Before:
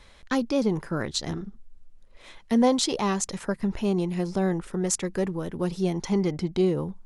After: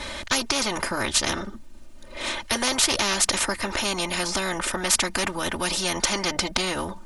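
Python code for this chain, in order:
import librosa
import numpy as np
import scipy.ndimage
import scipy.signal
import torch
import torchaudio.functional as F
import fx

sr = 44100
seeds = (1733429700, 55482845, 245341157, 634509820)

y = x + 0.92 * np.pad(x, (int(3.3 * sr / 1000.0), 0))[:len(x)]
y = fx.spectral_comp(y, sr, ratio=4.0)
y = F.gain(torch.from_numpy(y), 3.5).numpy()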